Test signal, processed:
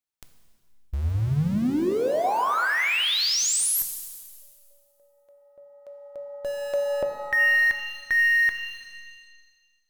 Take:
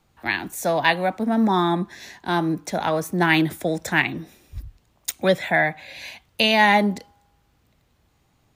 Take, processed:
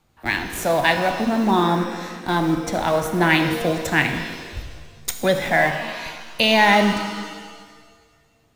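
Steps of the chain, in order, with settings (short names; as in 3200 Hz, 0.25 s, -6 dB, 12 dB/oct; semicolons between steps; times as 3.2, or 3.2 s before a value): in parallel at -12 dB: Schmitt trigger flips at -26 dBFS; on the sum: shimmer reverb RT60 1.6 s, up +7 st, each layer -8 dB, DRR 6 dB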